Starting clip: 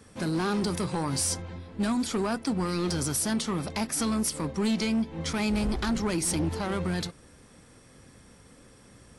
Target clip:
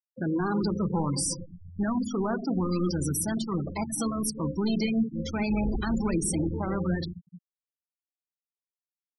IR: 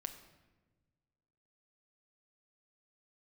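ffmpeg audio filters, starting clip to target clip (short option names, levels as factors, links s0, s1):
-filter_complex "[1:a]atrim=start_sample=2205[s0];[0:a][s0]afir=irnorm=-1:irlink=0,aeval=exprs='sgn(val(0))*max(abs(val(0))-0.00178,0)':c=same,afftfilt=real='re*gte(hypot(re,im),0.0355)':imag='im*gte(hypot(re,im),0.0355)':win_size=1024:overlap=0.75,volume=1.5"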